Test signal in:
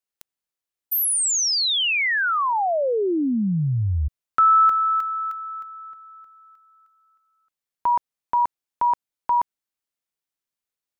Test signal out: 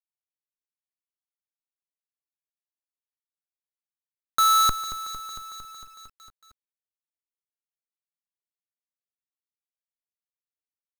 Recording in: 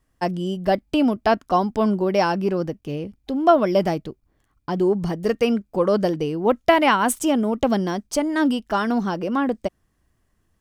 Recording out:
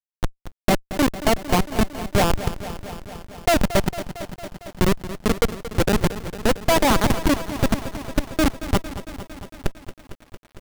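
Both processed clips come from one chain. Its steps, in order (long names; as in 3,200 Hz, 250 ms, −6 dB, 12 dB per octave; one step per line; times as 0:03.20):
mains-hum notches 60/120 Hz
comparator with hysteresis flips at −14.5 dBFS
feedback echo at a low word length 227 ms, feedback 80%, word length 8 bits, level −13 dB
level +6 dB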